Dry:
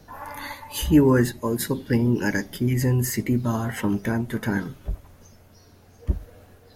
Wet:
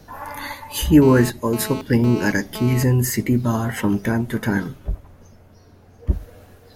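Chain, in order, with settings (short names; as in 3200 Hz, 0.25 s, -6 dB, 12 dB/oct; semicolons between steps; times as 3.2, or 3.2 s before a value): 1.02–2.83 GSM buzz -36 dBFS; 4.42–6.13 mismatched tape noise reduction decoder only; gain +4 dB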